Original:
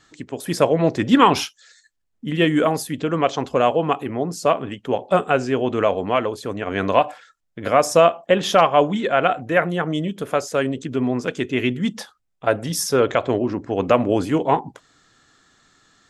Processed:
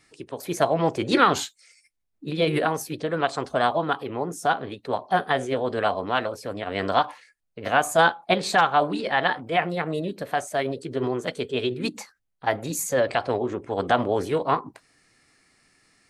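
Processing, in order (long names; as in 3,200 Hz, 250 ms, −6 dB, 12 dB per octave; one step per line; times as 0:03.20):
formants moved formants +4 semitones
level −4.5 dB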